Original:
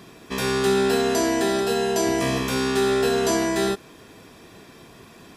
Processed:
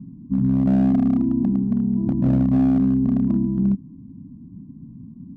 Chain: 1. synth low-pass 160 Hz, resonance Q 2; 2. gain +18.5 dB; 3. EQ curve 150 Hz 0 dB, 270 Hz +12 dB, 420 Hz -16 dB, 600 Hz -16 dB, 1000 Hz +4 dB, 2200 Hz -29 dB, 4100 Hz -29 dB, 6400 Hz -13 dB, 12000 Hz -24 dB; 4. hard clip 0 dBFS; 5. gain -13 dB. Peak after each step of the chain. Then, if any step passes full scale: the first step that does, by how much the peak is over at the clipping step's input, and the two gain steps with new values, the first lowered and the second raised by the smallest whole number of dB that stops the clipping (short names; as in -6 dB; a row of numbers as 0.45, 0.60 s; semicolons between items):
-17.0, +1.5, +6.0, 0.0, -13.0 dBFS; step 2, 6.0 dB; step 2 +12.5 dB, step 5 -7 dB